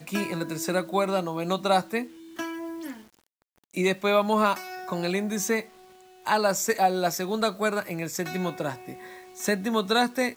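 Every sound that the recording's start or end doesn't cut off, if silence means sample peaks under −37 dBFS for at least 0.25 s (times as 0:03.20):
0:02.39–0:03.01
0:03.75–0:05.65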